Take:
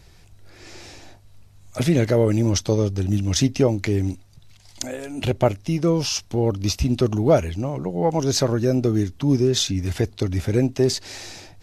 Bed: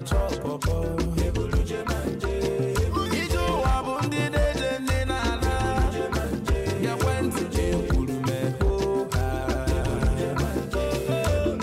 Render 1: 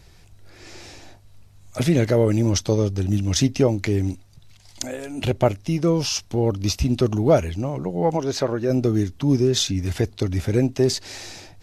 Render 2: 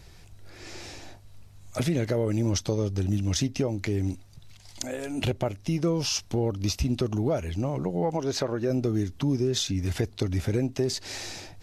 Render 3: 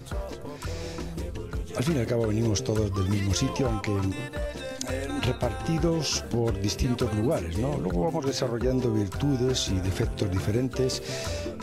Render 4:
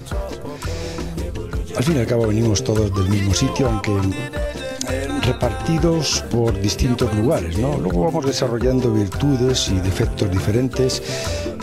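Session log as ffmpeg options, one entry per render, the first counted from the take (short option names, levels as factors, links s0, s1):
-filter_complex "[0:a]asplit=3[s0][s1][s2];[s0]afade=t=out:st=8.16:d=0.02[s3];[s1]bass=f=250:g=-8,treble=f=4000:g=-10,afade=t=in:st=8.16:d=0.02,afade=t=out:st=8.69:d=0.02[s4];[s2]afade=t=in:st=8.69:d=0.02[s5];[s3][s4][s5]amix=inputs=3:normalize=0"
-af "alimiter=limit=0.266:level=0:latency=1:release=298,acompressor=threshold=0.0501:ratio=2"
-filter_complex "[1:a]volume=0.335[s0];[0:a][s0]amix=inputs=2:normalize=0"
-af "volume=2.51"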